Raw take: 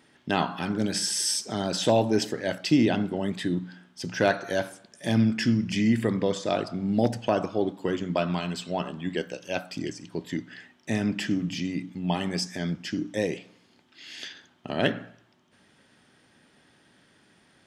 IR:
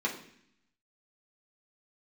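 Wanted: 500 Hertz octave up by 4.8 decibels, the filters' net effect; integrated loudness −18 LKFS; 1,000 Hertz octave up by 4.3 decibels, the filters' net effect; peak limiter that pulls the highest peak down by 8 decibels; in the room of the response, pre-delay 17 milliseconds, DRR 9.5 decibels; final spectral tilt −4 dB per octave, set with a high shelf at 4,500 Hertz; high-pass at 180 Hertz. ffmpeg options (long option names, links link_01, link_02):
-filter_complex "[0:a]highpass=180,equalizer=frequency=500:width_type=o:gain=5,equalizer=frequency=1000:width_type=o:gain=3.5,highshelf=frequency=4500:gain=3.5,alimiter=limit=-13.5dB:level=0:latency=1,asplit=2[link_01][link_02];[1:a]atrim=start_sample=2205,adelay=17[link_03];[link_02][link_03]afir=irnorm=-1:irlink=0,volume=-16.5dB[link_04];[link_01][link_04]amix=inputs=2:normalize=0,volume=9dB"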